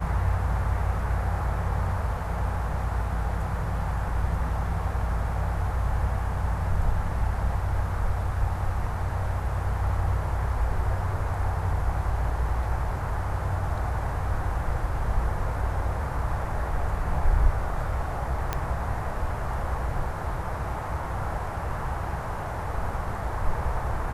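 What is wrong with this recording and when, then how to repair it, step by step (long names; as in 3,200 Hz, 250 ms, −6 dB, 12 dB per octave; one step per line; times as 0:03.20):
0:18.53: click −12 dBFS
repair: click removal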